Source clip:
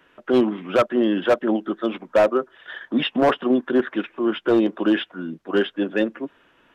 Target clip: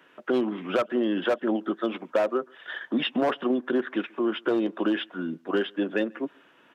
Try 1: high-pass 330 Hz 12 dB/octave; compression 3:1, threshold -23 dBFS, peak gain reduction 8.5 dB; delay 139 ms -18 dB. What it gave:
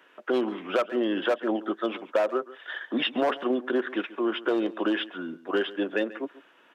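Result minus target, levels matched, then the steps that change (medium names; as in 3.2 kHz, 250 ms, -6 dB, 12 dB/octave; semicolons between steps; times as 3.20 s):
echo-to-direct +12 dB; 125 Hz band -6.0 dB
change: high-pass 160 Hz 12 dB/octave; change: delay 139 ms -30 dB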